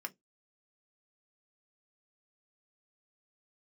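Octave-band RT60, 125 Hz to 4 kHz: 0.15, 0.20, 0.20, 0.10, 0.10, 0.15 seconds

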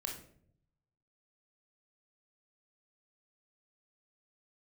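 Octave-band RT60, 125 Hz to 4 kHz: 1.2, 0.90, 0.75, 0.50, 0.45, 0.40 seconds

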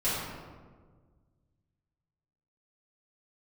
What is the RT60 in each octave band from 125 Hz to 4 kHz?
2.5, 2.0, 1.7, 1.4, 1.1, 0.80 seconds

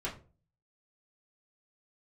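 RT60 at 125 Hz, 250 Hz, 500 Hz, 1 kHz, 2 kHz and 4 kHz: 0.65, 0.50, 0.45, 0.30, 0.25, 0.20 seconds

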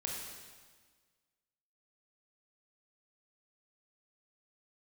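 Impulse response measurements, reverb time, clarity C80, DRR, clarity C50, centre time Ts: 1.5 s, 2.5 dB, −2.0 dB, 0.5 dB, 79 ms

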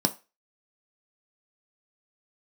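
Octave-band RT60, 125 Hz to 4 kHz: 0.25, 0.20, 0.25, 0.30, 0.30, 0.30 seconds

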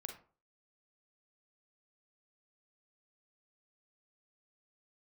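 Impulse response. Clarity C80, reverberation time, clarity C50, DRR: 13.0 dB, 0.40 s, 7.0 dB, 3.5 dB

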